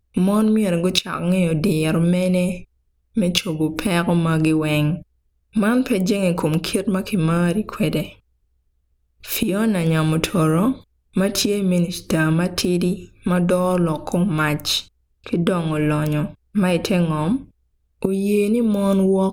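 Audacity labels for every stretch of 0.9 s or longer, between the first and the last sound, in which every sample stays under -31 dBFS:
8.100000	9.240000	silence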